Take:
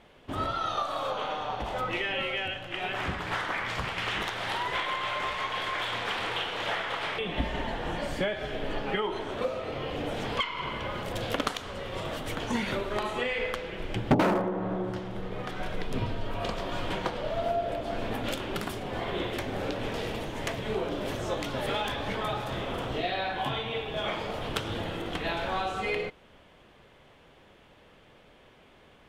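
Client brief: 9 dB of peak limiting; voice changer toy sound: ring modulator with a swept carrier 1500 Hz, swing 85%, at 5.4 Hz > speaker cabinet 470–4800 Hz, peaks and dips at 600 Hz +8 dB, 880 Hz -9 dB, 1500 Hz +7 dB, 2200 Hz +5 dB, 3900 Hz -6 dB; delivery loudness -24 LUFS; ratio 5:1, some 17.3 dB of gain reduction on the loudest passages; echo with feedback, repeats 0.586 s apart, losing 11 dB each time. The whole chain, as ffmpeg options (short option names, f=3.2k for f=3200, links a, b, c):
-af "acompressor=threshold=-39dB:ratio=5,alimiter=level_in=10dB:limit=-24dB:level=0:latency=1,volume=-10dB,aecho=1:1:586|1172|1758:0.282|0.0789|0.0221,aeval=exprs='val(0)*sin(2*PI*1500*n/s+1500*0.85/5.4*sin(2*PI*5.4*n/s))':c=same,highpass=470,equalizer=f=600:t=q:w=4:g=8,equalizer=f=880:t=q:w=4:g=-9,equalizer=f=1.5k:t=q:w=4:g=7,equalizer=f=2.2k:t=q:w=4:g=5,equalizer=f=3.9k:t=q:w=4:g=-6,lowpass=f=4.8k:w=0.5412,lowpass=f=4.8k:w=1.3066,volume=18.5dB"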